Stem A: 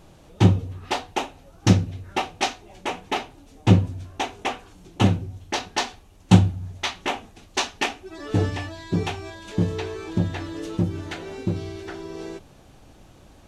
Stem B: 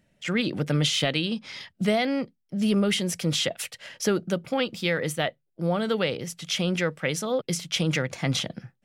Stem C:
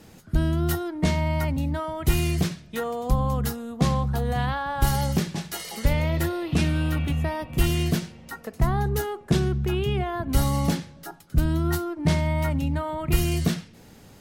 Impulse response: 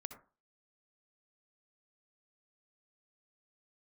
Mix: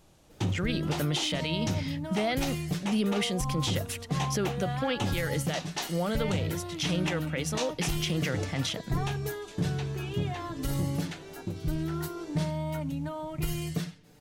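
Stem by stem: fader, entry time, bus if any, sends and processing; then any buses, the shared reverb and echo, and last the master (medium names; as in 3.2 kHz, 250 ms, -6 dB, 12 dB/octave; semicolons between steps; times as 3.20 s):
-10.5 dB, 0.00 s, no send, treble shelf 4 kHz +8.5 dB
-3.5 dB, 0.30 s, no send, none
-9.5 dB, 0.30 s, no send, comb 6.7 ms, depth 69%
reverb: none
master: peak limiter -19.5 dBFS, peak gain reduction 10 dB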